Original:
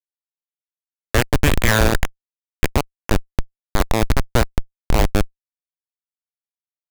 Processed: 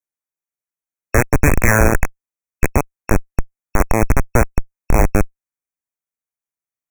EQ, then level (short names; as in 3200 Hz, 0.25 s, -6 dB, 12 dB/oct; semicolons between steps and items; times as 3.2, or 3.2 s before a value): brick-wall FIR band-stop 2600–5500 Hz; +3.0 dB